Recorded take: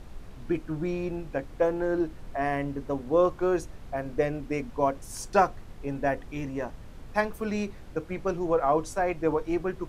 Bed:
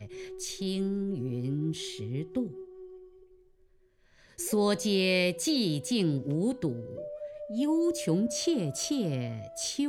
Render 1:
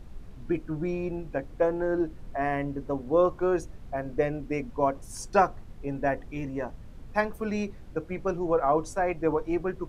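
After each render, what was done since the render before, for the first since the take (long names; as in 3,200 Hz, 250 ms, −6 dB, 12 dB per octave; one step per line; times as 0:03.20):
broadband denoise 6 dB, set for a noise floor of −45 dBFS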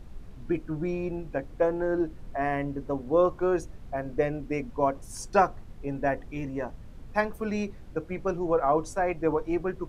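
no processing that can be heard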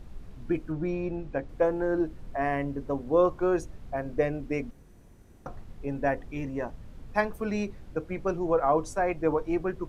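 0:00.72–0:01.49: high-frequency loss of the air 61 metres
0:04.71–0:05.46: fill with room tone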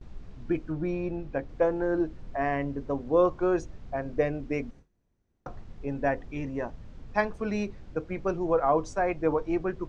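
noise gate with hold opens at −38 dBFS
low-pass filter 6,900 Hz 24 dB per octave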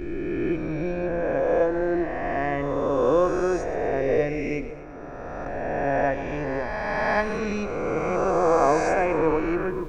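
peak hold with a rise ahead of every peak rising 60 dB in 2.77 s
echo with a time of its own for lows and highs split 430 Hz, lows 528 ms, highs 124 ms, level −14 dB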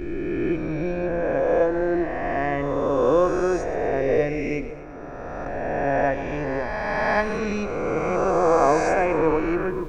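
level +1.5 dB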